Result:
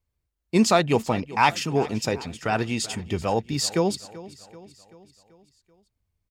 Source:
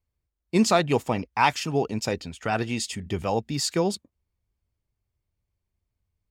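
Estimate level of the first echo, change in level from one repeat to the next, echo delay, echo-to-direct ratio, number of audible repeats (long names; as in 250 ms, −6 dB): −18.0 dB, −5.5 dB, 385 ms, −16.5 dB, 4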